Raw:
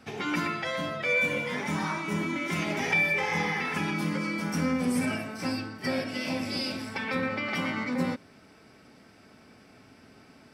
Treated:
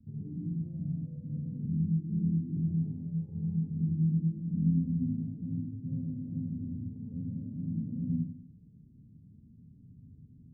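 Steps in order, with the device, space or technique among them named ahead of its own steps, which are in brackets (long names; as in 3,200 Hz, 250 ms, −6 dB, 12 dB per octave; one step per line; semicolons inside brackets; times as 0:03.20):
club heard from the street (brickwall limiter −21.5 dBFS, peak gain reduction 6.5 dB; low-pass filter 180 Hz 24 dB per octave; convolution reverb RT60 0.55 s, pre-delay 70 ms, DRR −1.5 dB)
0:01.65–0:02.57: Butterworth low-pass 510 Hz 96 dB per octave
level +3.5 dB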